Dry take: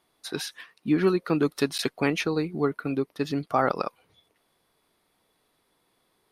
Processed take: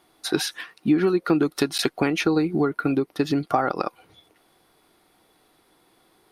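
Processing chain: compressor 6:1, threshold -28 dBFS, peak gain reduction 11 dB; small resonant body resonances 330/760/1400 Hz, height 7 dB; gain +8 dB

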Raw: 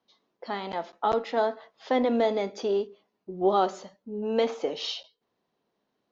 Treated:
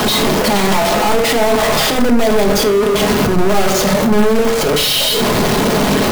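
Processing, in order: infinite clipping; low shelf 370 Hz +9 dB; sample leveller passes 3; reverb RT60 0.55 s, pre-delay 5 ms, DRR 4.5 dB; gain +7 dB

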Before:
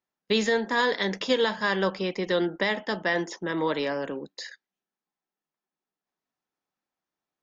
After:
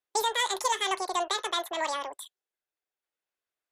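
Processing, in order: bell 75 Hz -3 dB 2 oct; speed mistake 7.5 ips tape played at 15 ips; gain -3 dB

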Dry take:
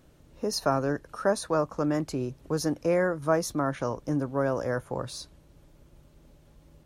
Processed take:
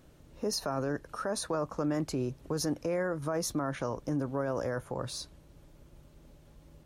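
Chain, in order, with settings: limiter -23 dBFS, peak gain reduction 11.5 dB

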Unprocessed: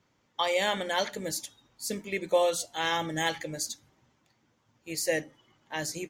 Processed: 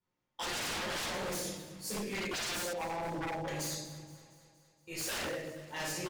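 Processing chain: rattling part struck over -37 dBFS, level -34 dBFS; resonator 180 Hz, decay 0.21 s, harmonics all, mix 60%; shoebox room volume 410 m³, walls mixed, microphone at 4.6 m; gate -57 dBFS, range -14 dB; 2.73–3.48 elliptic low-pass 960 Hz; wavefolder -26 dBFS; feedback echo 0.234 s, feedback 59%, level -17 dB; gain -6 dB

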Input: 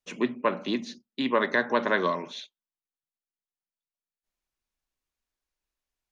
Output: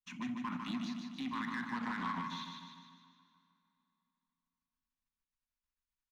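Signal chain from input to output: Chebyshev band-stop 260–920 Hz, order 3; high shelf 3600 Hz -7.5 dB; level quantiser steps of 10 dB; limiter -31 dBFS, peak gain reduction 12.5 dB; sample leveller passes 1; feedback echo 0.15 s, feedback 53%, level -5 dB; on a send at -16 dB: reverb RT60 3.1 s, pre-delay 16 ms; 1.76–2.23 on the sum: Doppler distortion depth 0.15 ms; gain -1.5 dB

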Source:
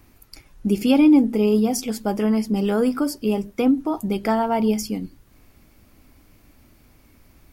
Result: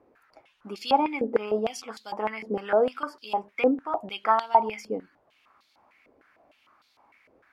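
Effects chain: bell 1000 Hz +6.5 dB 2 oct; stepped band-pass 6.6 Hz 480–4000 Hz; gain +5 dB

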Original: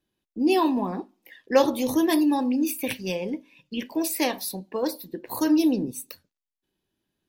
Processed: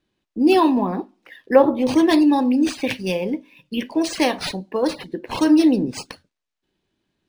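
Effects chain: 0.81–1.87 treble ducked by the level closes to 1300 Hz, closed at -18.5 dBFS; 2.69–4.18 LPF 9600 Hz 12 dB/oct; decimation joined by straight lines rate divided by 3×; gain +6 dB

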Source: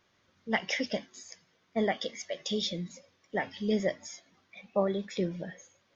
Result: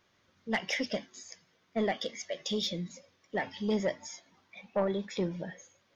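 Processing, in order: soft clip -20.5 dBFS, distortion -17 dB; 3.46–5.54 bell 910 Hz +9 dB 0.23 oct

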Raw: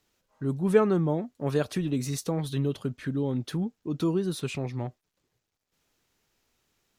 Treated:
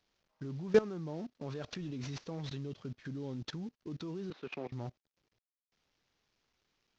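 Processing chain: CVSD 32 kbps; 4.3–4.72 three-band isolator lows -21 dB, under 240 Hz, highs -14 dB, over 3200 Hz; level quantiser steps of 20 dB

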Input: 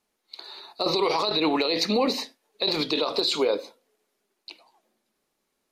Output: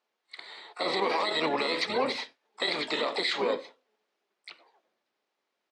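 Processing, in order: harmoniser -12 st -4 dB, -3 st -9 dB, +12 st -11 dB; BPF 430–4100 Hz; gain -3.5 dB

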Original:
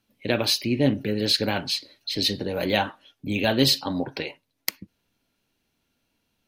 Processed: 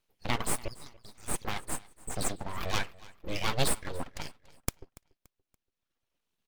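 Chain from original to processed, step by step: reverb removal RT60 1.8 s; 0.68–1.45 rippled Chebyshev high-pass 1600 Hz, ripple 6 dB; full-wave rectifier; feedback echo 0.286 s, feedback 37%, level -21.5 dB; gain -4.5 dB

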